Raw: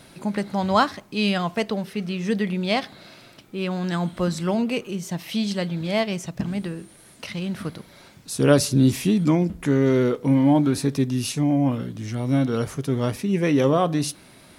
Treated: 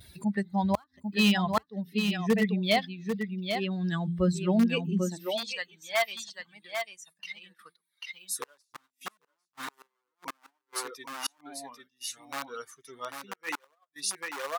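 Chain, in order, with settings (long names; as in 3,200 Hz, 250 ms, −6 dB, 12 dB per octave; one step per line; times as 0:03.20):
spectral dynamics exaggerated over time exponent 2
0:10.61–0:12.25: low-shelf EQ 420 Hz −7 dB
in parallel at −12 dB: wrap-around overflow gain 20 dB
on the sum: pitch vibrato 1.7 Hz 41 cents
hum removal 85.94 Hz, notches 4
on a send: single-tap delay 794 ms −6.5 dB
on the sum: upward compression, threshold −36 dBFS
gate with flip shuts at −16 dBFS, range −38 dB
high-pass filter sweep 68 Hz → 1,100 Hz, 0:04.66–0:05.53
noise gate −57 dBFS, range −14 dB
level +2 dB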